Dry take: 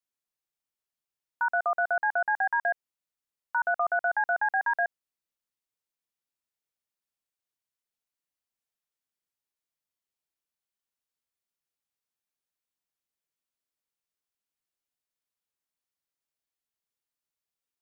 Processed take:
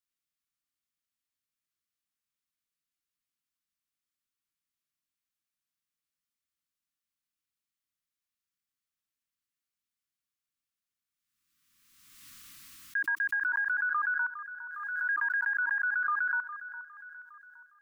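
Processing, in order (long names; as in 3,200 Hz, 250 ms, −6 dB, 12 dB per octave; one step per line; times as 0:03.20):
played backwards from end to start
Chebyshev band-stop filter 310–1,100 Hz, order 4
on a send: delay that swaps between a low-pass and a high-pass 408 ms, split 1,400 Hz, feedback 52%, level −11 dB
on the sum: background raised ahead of every attack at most 34 dB per second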